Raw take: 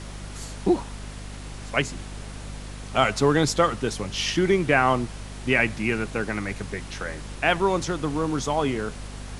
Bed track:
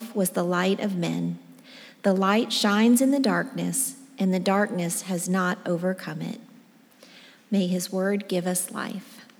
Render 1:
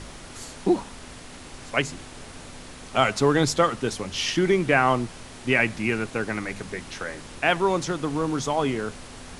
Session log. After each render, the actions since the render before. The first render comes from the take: de-hum 50 Hz, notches 4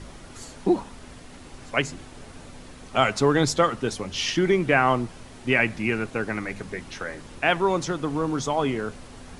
denoiser 6 dB, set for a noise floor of -43 dBFS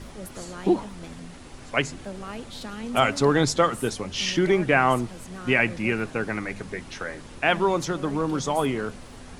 add bed track -15.5 dB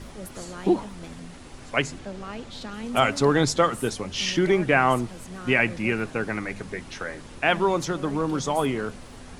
1.99–2.74 LPF 7400 Hz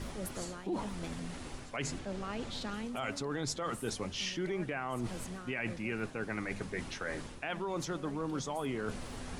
limiter -15.5 dBFS, peak gain reduction 10 dB; reverse; compressor 4:1, threshold -35 dBFS, peak gain reduction 13 dB; reverse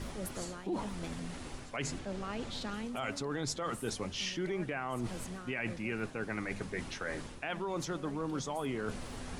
nothing audible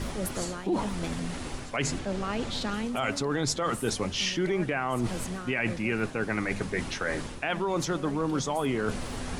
gain +8 dB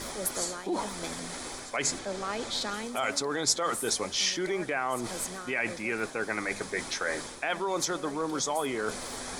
tone controls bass -14 dB, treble +6 dB; notch 2800 Hz, Q 6.3

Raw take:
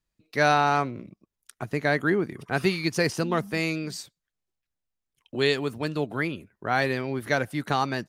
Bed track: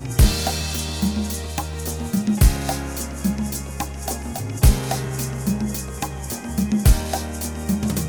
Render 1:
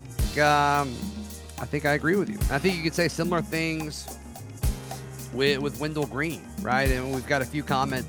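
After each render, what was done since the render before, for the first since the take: add bed track -12.5 dB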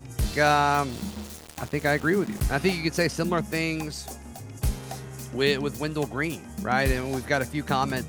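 0.89–2.45 sample gate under -37 dBFS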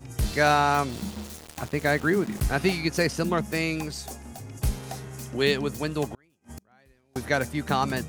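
6.14–7.16 flipped gate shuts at -27 dBFS, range -36 dB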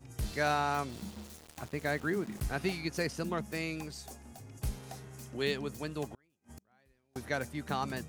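gain -9.5 dB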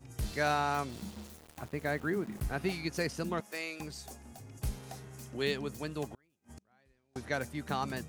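1.3–2.7 bell 5700 Hz -5 dB 2.2 oct; 3.4–3.8 HPF 480 Hz; 6.54–7.32 LPF 8800 Hz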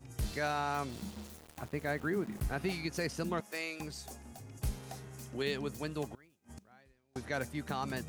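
reverse; upward compressor, threshold -47 dBFS; reverse; limiter -24 dBFS, peak gain reduction 5.5 dB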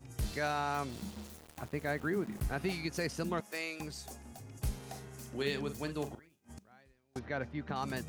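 4.76–6.54 doubler 43 ms -10 dB; 7.19–7.76 air absorption 260 m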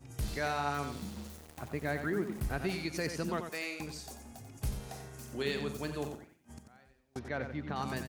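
feedback echo 90 ms, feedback 23%, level -8 dB

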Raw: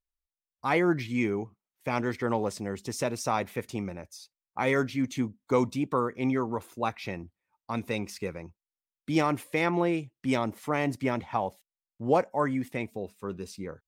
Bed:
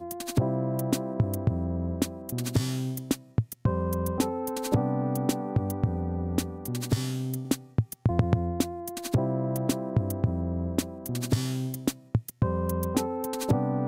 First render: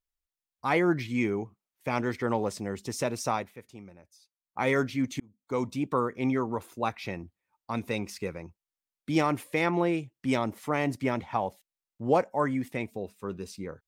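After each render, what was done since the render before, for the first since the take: 3.3–4.62 dip -13 dB, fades 0.22 s; 5.2–5.88 fade in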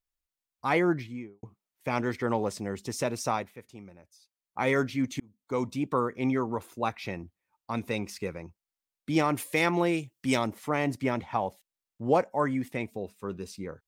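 0.78–1.43 studio fade out; 9.37–10.47 high shelf 3500 Hz +10 dB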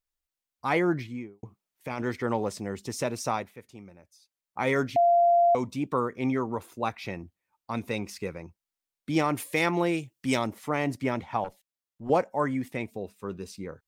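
0.93–2.02 negative-ratio compressor -32 dBFS; 4.96–5.55 bleep 691 Hz -17 dBFS; 11.44–12.1 tube stage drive 27 dB, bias 0.65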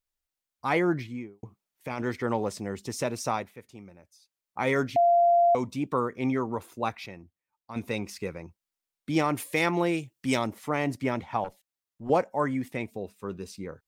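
7.06–7.76 gain -8 dB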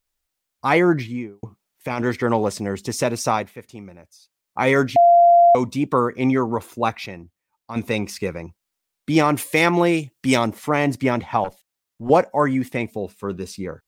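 gain +8.5 dB

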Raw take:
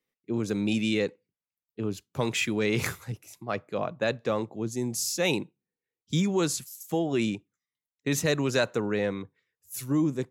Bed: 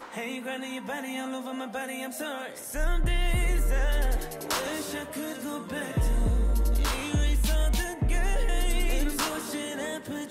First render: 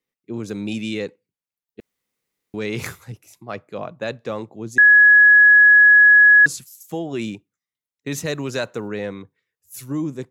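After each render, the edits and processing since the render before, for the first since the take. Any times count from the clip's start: 1.8–2.54 room tone; 4.78–6.46 bleep 1680 Hz -7 dBFS; 7.18–8.88 short-mantissa float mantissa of 6-bit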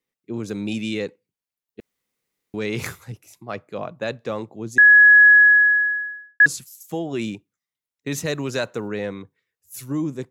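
5.26–6.4 studio fade out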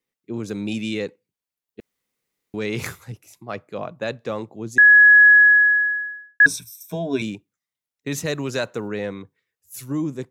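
6.45–7.22 ripple EQ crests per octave 1.6, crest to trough 17 dB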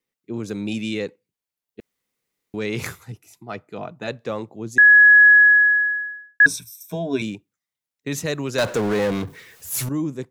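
3.03–4.08 notch comb 550 Hz; 8.58–9.89 power-law curve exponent 0.5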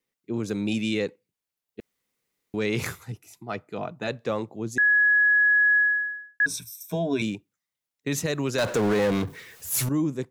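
compressor 2.5:1, threshold -17 dBFS, peak gain reduction 6 dB; limiter -16 dBFS, peak gain reduction 7.5 dB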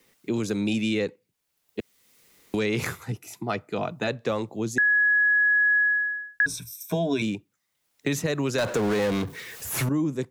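three-band squash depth 70%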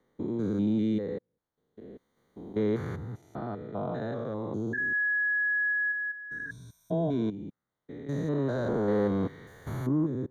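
stepped spectrum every 0.2 s; running mean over 17 samples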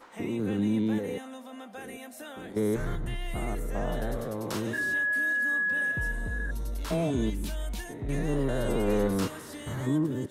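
add bed -9 dB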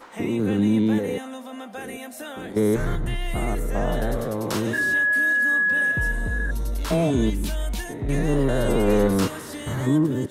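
gain +7 dB

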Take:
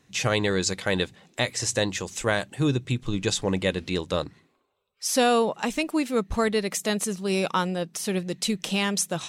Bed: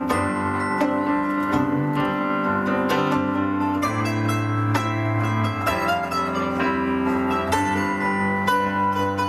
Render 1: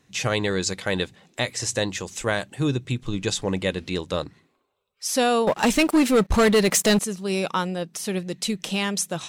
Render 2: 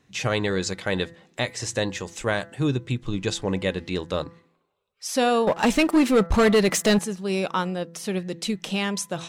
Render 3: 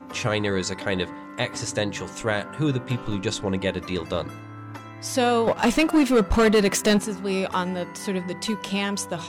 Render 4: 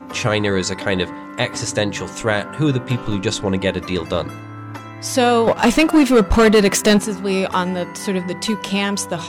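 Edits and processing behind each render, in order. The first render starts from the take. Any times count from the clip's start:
5.47–6.99 sample leveller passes 3
high shelf 5300 Hz -7 dB; de-hum 168 Hz, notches 12
add bed -17 dB
gain +6 dB

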